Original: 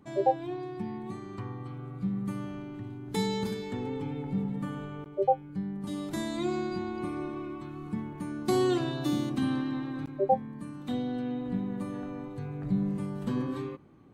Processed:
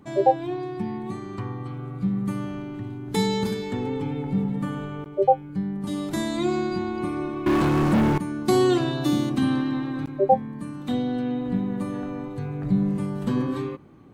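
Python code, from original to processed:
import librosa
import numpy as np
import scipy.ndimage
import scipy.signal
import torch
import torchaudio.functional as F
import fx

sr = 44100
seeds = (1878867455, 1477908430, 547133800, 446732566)

y = fx.leveller(x, sr, passes=5, at=(7.46, 8.18))
y = y * librosa.db_to_amplitude(6.5)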